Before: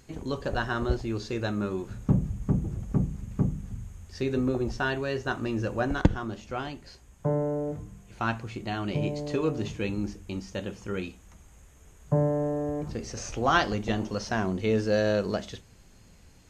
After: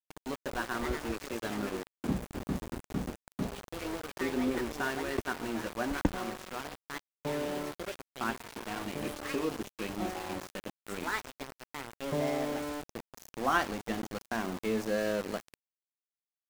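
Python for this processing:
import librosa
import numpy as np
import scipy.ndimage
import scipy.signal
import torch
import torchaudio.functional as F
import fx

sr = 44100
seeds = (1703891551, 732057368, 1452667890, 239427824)

p1 = fx.graphic_eq_10(x, sr, hz=(125, 250, 1000, 2000, 4000, 8000), db=(-9, 7, 4, 4, -5, 7))
p2 = fx.echo_pitch(p1, sr, ms=382, semitones=4, count=3, db_per_echo=-6.0)
p3 = p2 + fx.echo_single(p2, sr, ms=90, db=-22.0, dry=0)
p4 = np.where(np.abs(p3) >= 10.0 ** (-27.0 / 20.0), p3, 0.0)
y = p4 * librosa.db_to_amplitude(-8.5)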